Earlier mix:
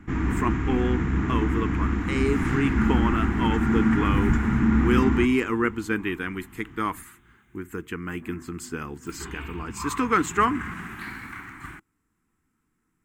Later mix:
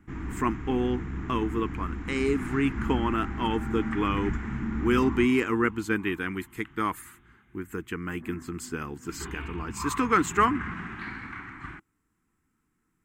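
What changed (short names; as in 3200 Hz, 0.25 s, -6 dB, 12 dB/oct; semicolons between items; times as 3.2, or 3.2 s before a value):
first sound -9.0 dB; second sound: add air absorption 140 m; reverb: off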